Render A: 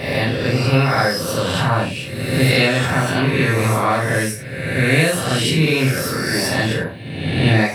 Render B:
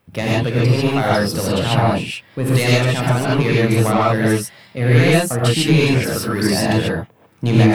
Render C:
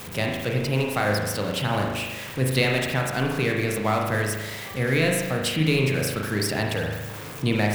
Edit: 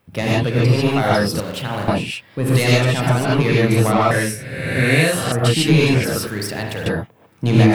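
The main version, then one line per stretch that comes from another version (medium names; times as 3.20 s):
B
1.40–1.88 s: from C
4.11–5.32 s: from A
6.27–6.86 s: from C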